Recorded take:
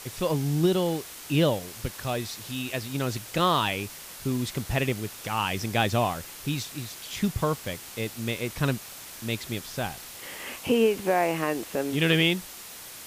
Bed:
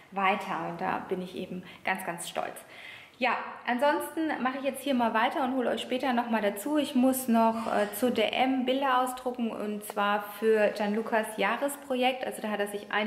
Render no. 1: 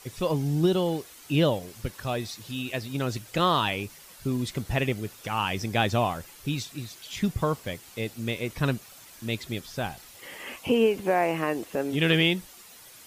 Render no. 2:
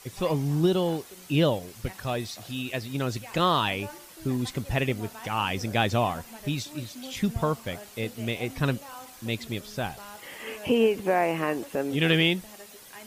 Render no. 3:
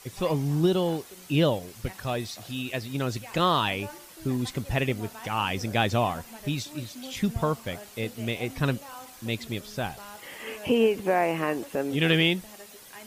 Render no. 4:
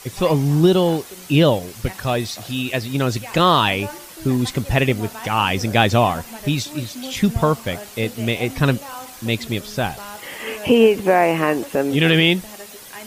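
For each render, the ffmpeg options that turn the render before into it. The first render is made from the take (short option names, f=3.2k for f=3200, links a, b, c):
-af "afftdn=nr=9:nf=-43"
-filter_complex "[1:a]volume=-18dB[a];[0:a][a]amix=inputs=2:normalize=0"
-af anull
-af "volume=9dB,alimiter=limit=-3dB:level=0:latency=1"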